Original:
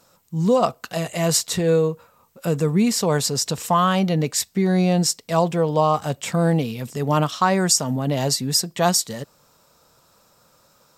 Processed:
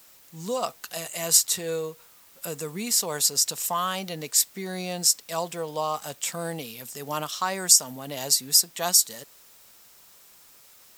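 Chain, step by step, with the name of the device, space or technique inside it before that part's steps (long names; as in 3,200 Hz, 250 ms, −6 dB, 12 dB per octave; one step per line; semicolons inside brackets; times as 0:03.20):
turntable without a phono preamp (RIAA equalisation recording; white noise bed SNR 28 dB)
level −8.5 dB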